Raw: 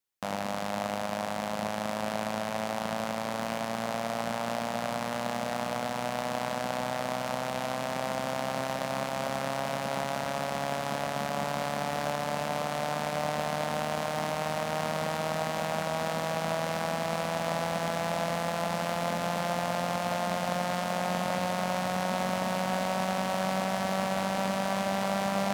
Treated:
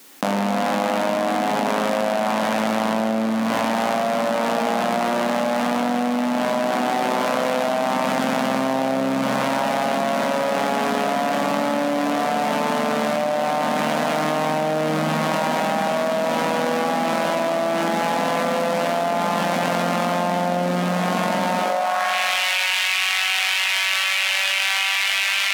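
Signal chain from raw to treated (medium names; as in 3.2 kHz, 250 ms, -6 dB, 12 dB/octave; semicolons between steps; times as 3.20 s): high-pass sweep 250 Hz -> 2.5 kHz, 21.57–22.14 s; spring tank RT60 1.4 s, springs 45 ms, chirp 40 ms, DRR 0 dB; level flattener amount 100%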